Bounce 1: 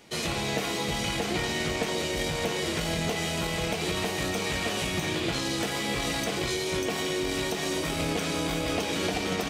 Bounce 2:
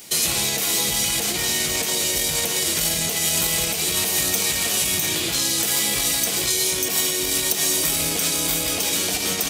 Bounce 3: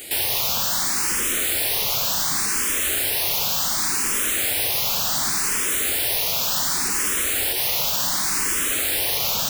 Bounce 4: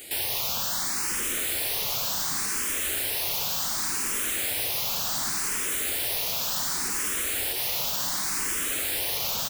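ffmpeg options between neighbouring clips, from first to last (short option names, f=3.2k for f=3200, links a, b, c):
-af "highshelf=f=3.8k:g=7,alimiter=limit=-21.5dB:level=0:latency=1:release=152,aemphasis=mode=production:type=75fm,volume=4dB"
-filter_complex "[0:a]asplit=2[a][b];[b]alimiter=limit=-12.5dB:level=0:latency=1:release=138,volume=3dB[c];[a][c]amix=inputs=2:normalize=0,aeval=exprs='(mod(5.31*val(0)+1,2)-1)/5.31':c=same,asplit=2[d][e];[e]afreqshift=0.68[f];[d][f]amix=inputs=2:normalize=1"
-af "aecho=1:1:1025:0.178,volume=-6dB"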